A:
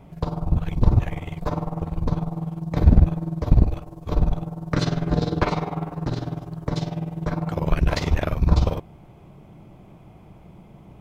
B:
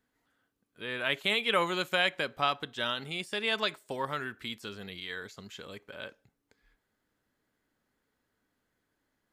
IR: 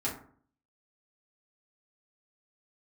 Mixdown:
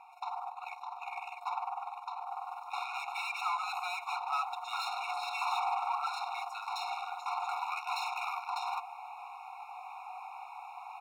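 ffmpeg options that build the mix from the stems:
-filter_complex "[0:a]equalizer=f=1.4k:t=o:w=0.58:g=-6.5,alimiter=limit=-14dB:level=0:latency=1:release=166,volume=-8.5dB,afade=t=in:st=2.25:d=0.4:silence=0.334965[a];[1:a]adelay=1900,volume=-16dB[b];[a][b]amix=inputs=2:normalize=0,asplit=2[c][d];[d]highpass=f=720:p=1,volume=34dB,asoftclip=type=tanh:threshold=-20.5dB[e];[c][e]amix=inputs=2:normalize=0,lowpass=f=1.8k:p=1,volume=-6dB,afftfilt=real='re*eq(mod(floor(b*sr/1024/720),2),1)':imag='im*eq(mod(floor(b*sr/1024/720),2),1)':win_size=1024:overlap=0.75"

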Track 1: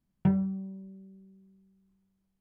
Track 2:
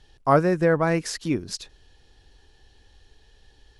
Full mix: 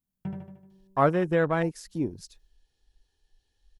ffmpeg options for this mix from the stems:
-filter_complex "[0:a]volume=-10.5dB,asplit=3[a][b][c];[a]atrim=end=1.28,asetpts=PTS-STARTPTS,afade=t=out:st=1.276:d=0.004:c=hsin[d];[b]atrim=start=1.28:end=1.86,asetpts=PTS-STARTPTS,volume=0[e];[c]atrim=start=1.86,asetpts=PTS-STARTPTS,afade=t=in:d=0.004:c=hsin[f];[d][e][f]concat=n=3:v=0:a=1,asplit=2[g][h];[h]volume=-3dB[i];[1:a]afwtdn=0.0282,adelay=700,volume=-4dB[j];[i]aecho=0:1:76|152|228|304|380|456|532|608:1|0.52|0.27|0.141|0.0731|0.038|0.0198|0.0103[k];[g][j][k]amix=inputs=3:normalize=0,aemphasis=mode=production:type=50kf"

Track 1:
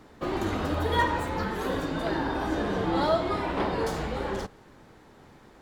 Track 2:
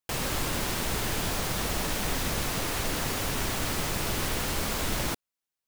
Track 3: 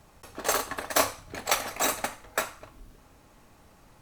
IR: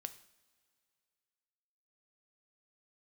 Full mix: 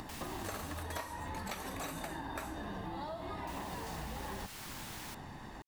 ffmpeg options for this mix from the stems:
-filter_complex "[0:a]acompressor=threshold=-34dB:ratio=6,aecho=1:1:1.1:0.52,acompressor=mode=upward:threshold=-39dB:ratio=2.5,volume=-1dB[a];[1:a]highpass=1.1k,volume=-14.5dB,asplit=3[b][c][d];[b]atrim=end=0.83,asetpts=PTS-STARTPTS,afade=t=out:st=0.826:d=0.004:c=hsin[e];[c]atrim=start=0.83:end=3.47,asetpts=PTS-STARTPTS,volume=0[f];[d]atrim=start=3.47,asetpts=PTS-STARTPTS,afade=t=in:d=0.004:c=hsin[g];[e][f][g]concat=n=3:v=0:a=1[h];[2:a]acrossover=split=4200[i][j];[j]acompressor=threshold=-40dB:ratio=4:attack=1:release=60[k];[i][k]amix=inputs=2:normalize=0,equalizer=f=12k:t=o:w=1.5:g=9.5,volume=-8dB[l];[a][h][l]amix=inputs=3:normalize=0,acompressor=threshold=-38dB:ratio=6"

